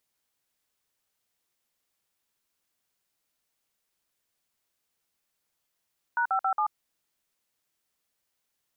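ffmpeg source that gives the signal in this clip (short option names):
-f lavfi -i "aevalsrc='0.0531*clip(min(mod(t,0.137),0.085-mod(t,0.137))/0.002,0,1)*(eq(floor(t/0.137),0)*(sin(2*PI*941*mod(t,0.137))+sin(2*PI*1477*mod(t,0.137)))+eq(floor(t/0.137),1)*(sin(2*PI*770*mod(t,0.137))+sin(2*PI*1336*mod(t,0.137)))+eq(floor(t/0.137),2)*(sin(2*PI*770*mod(t,0.137))+sin(2*PI*1336*mod(t,0.137)))+eq(floor(t/0.137),3)*(sin(2*PI*852*mod(t,0.137))+sin(2*PI*1209*mod(t,0.137))))':d=0.548:s=44100"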